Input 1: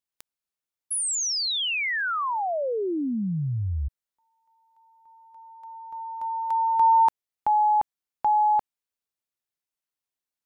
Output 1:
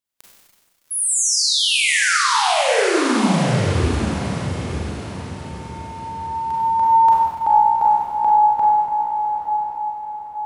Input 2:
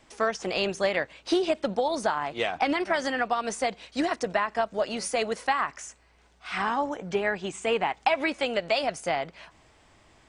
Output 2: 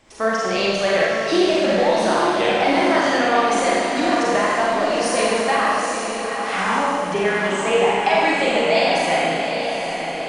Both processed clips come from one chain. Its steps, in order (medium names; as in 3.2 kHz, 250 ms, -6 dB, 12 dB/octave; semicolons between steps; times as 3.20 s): echo that smears into a reverb 829 ms, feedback 46%, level -6 dB; Schroeder reverb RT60 1.7 s, combs from 32 ms, DRR -5.5 dB; trim +2 dB